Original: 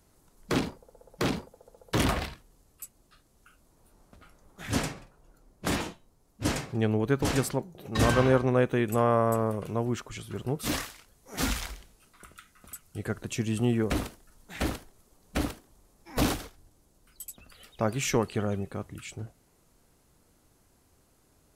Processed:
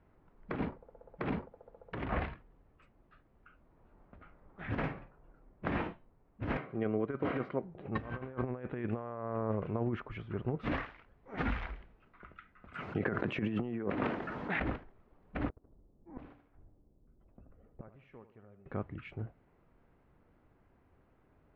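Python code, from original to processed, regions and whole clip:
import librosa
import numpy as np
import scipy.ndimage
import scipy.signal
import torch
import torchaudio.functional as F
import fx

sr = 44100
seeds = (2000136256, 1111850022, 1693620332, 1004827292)

y = fx.chain(x, sr, fx.highpass(hz=290.0, slope=6),
    fx.air_absorb(metres=160.0),
    fx.notch_comb(f0_hz=870.0), at=(6.57, 7.63))
y = fx.chain(y, sr, fx.highpass(hz=170.0, slope=12),
    fx.resample_bad(factor=2, down='none', up='hold'),
    fx.env_flatten(amount_pct=70), at=(12.74, 14.6))
y = fx.chain(y, sr, fx.env_lowpass(base_hz=380.0, full_db=-24.5),
    fx.gate_flip(shuts_db=-31.0, range_db=-27),
    fx.echo_feedback(ms=76, feedback_pct=47, wet_db=-12.0), at=(15.49, 18.66))
y = scipy.signal.sosfilt(scipy.signal.butter(4, 2300.0, 'lowpass', fs=sr, output='sos'), y)
y = fx.over_compress(y, sr, threshold_db=-29.0, ratio=-0.5)
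y = F.gain(torch.from_numpy(y), -4.5).numpy()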